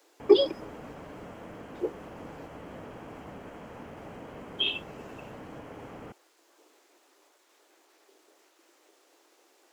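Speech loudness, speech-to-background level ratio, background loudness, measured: -27.5 LUFS, 17.5 dB, -45.0 LUFS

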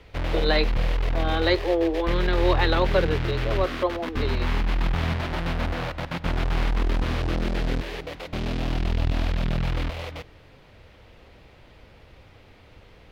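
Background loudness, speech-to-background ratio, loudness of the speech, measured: -28.0 LUFS, 2.0 dB, -26.0 LUFS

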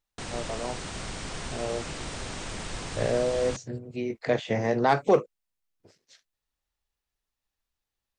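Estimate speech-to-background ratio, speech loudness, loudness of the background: 8.5 dB, -28.0 LUFS, -36.5 LUFS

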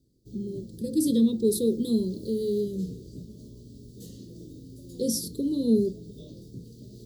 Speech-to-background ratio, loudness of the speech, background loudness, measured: 17.5 dB, -27.0 LUFS, -44.5 LUFS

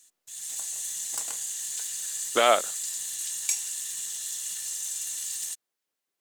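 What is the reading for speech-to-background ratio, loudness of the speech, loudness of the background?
6.5 dB, -24.0 LUFS, -30.5 LUFS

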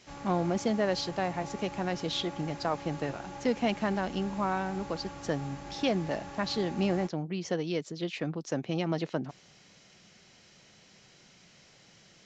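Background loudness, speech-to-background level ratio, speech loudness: -43.5 LUFS, 11.0 dB, -32.5 LUFS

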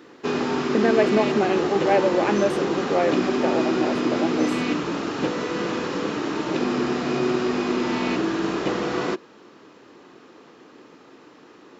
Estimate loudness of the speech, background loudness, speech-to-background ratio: -24.0 LUFS, -24.5 LUFS, 0.5 dB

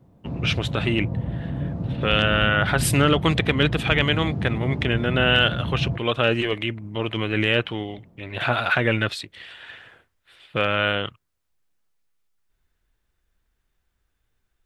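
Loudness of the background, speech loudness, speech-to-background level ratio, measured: -28.5 LUFS, -22.5 LUFS, 6.0 dB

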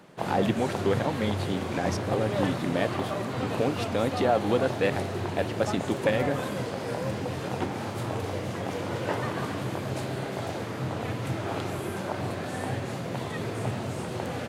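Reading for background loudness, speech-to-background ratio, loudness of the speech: -32.0 LUFS, 2.5 dB, -29.5 LUFS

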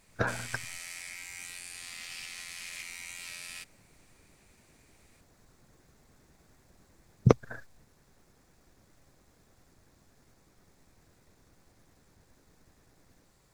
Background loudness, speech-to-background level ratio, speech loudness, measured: -41.0 LUFS, 10.0 dB, -31.0 LUFS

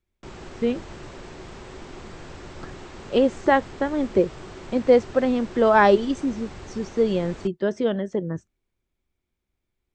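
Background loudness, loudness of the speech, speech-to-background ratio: -41.0 LUFS, -22.5 LUFS, 18.5 dB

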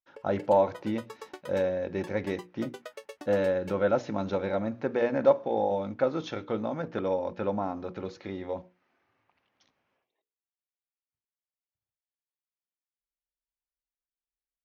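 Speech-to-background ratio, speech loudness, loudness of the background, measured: 17.5 dB, -29.5 LUFS, -47.0 LUFS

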